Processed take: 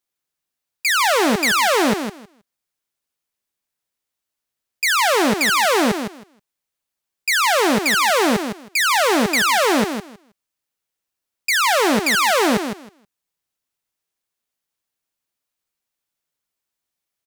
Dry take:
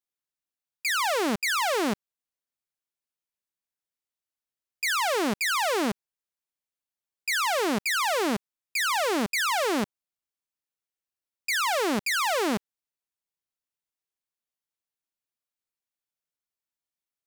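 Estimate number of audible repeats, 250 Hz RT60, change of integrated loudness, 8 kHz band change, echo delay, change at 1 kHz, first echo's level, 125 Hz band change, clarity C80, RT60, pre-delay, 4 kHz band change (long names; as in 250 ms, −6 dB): 2, no reverb audible, +9.0 dB, +9.0 dB, 159 ms, +9.0 dB, −8.0 dB, +9.0 dB, no reverb audible, no reverb audible, no reverb audible, +9.0 dB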